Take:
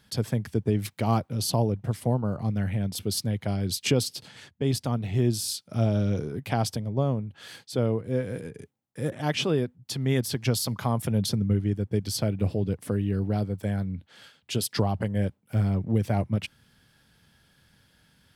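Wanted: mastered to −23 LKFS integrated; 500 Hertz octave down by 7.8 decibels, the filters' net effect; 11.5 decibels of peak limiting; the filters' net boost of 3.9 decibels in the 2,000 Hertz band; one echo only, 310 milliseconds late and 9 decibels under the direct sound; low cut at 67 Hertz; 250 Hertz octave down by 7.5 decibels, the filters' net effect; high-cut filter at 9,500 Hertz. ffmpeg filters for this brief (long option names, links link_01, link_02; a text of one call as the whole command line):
ffmpeg -i in.wav -af "highpass=67,lowpass=9500,equalizer=frequency=250:width_type=o:gain=-8.5,equalizer=frequency=500:width_type=o:gain=-7.5,equalizer=frequency=2000:width_type=o:gain=5.5,alimiter=limit=-22.5dB:level=0:latency=1,aecho=1:1:310:0.355,volume=9.5dB" out.wav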